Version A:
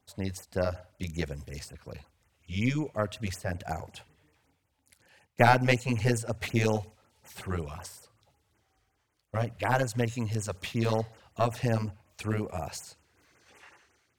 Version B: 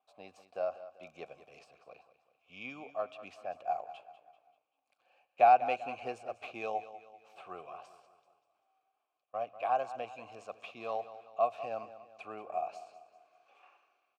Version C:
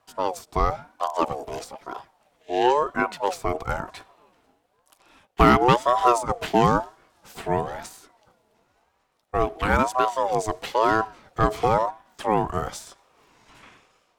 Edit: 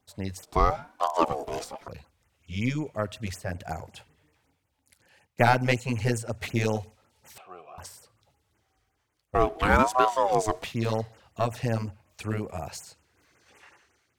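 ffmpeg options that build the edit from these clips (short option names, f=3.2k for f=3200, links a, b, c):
-filter_complex "[2:a]asplit=2[a][b];[0:a]asplit=4[c][d][e][f];[c]atrim=end=0.432[g];[a]atrim=start=0.428:end=1.882[h];[d]atrim=start=1.878:end=7.382[i];[1:a]atrim=start=7.378:end=7.782[j];[e]atrim=start=7.778:end=9.352[k];[b]atrim=start=9.348:end=10.642[l];[f]atrim=start=10.638[m];[g][h]acrossfade=d=0.004:c1=hsin:c2=hsin[n];[n][i]acrossfade=d=0.004:c1=hsin:c2=hsin[o];[o][j]acrossfade=d=0.004:c1=hsin:c2=hsin[p];[p][k]acrossfade=d=0.004:c1=hsin:c2=hsin[q];[q][l]acrossfade=d=0.004:c1=hsin:c2=hsin[r];[r][m]acrossfade=d=0.004:c1=hsin:c2=hsin"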